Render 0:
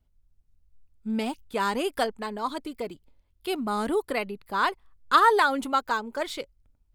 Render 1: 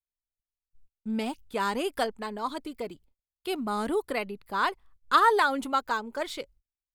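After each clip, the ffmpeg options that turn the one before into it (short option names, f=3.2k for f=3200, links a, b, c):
-af "agate=range=-34dB:threshold=-52dB:ratio=16:detection=peak,volume=-2dB"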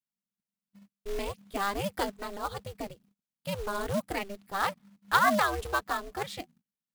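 -af "aeval=exprs='val(0)*sin(2*PI*200*n/s)':c=same,acrusher=bits=3:mode=log:mix=0:aa=0.000001"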